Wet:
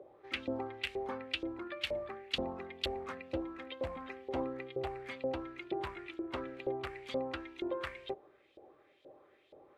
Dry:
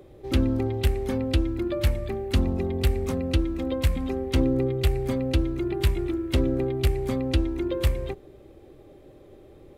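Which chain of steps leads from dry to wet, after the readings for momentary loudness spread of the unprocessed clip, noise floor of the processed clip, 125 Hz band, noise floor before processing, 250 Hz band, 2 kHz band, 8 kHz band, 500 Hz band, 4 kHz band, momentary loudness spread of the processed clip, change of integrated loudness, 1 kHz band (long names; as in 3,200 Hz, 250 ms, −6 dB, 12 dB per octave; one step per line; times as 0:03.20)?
4 LU, −67 dBFS, −26.5 dB, −50 dBFS, −16.0 dB, −4.5 dB, below −15 dB, −10.5 dB, −5.5 dB, 4 LU, −13.5 dB, −3.5 dB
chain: high-shelf EQ 12,000 Hz −6.5 dB
auto-filter band-pass saw up 2.1 Hz 560–3,700 Hz
level +2 dB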